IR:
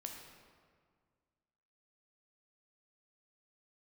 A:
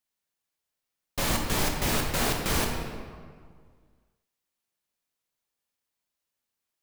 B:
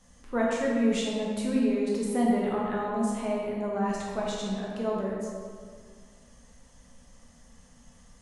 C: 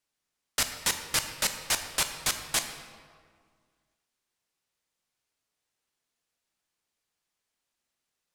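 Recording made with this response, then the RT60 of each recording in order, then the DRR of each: A; 1.9, 1.9, 1.9 seconds; 1.5, −4.5, 6.5 decibels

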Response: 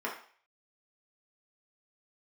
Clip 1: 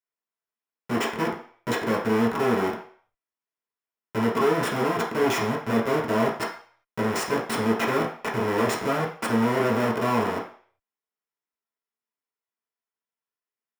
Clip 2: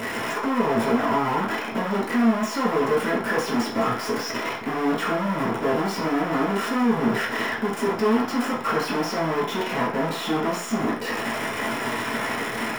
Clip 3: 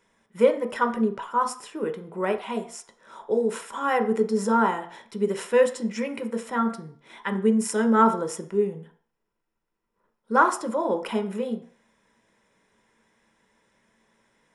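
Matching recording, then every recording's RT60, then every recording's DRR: 1; 0.45, 0.45, 0.45 seconds; −4.0, −8.0, 6.0 decibels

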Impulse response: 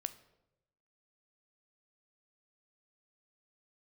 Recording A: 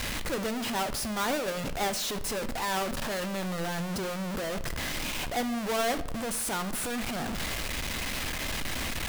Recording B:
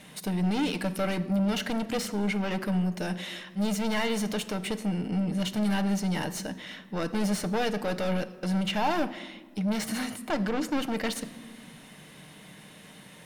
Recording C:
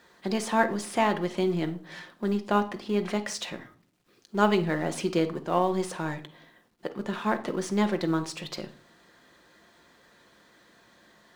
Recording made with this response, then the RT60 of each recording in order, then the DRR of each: A; 0.90 s, non-exponential decay, 0.50 s; 11.0, 9.0, 6.0 decibels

